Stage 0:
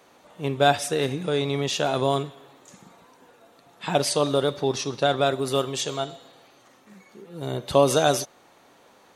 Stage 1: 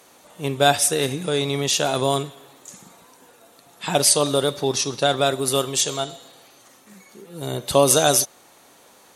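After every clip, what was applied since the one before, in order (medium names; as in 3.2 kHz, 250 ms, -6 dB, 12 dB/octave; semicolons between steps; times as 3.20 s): peaking EQ 11 kHz +13.5 dB 1.7 oct; trim +1.5 dB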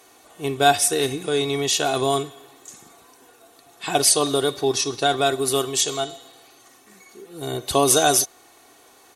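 comb 2.7 ms, depth 58%; trim -1.5 dB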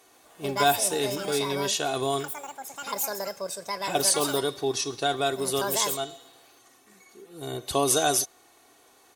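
ever faster or slower copies 133 ms, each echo +6 st, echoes 2, each echo -6 dB; trim -6 dB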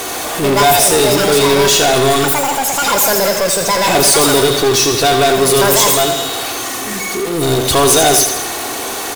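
power-law waveshaper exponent 0.35; on a send: feedback delay 83 ms, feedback 53%, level -8 dB; on the sum: trim +3.5 dB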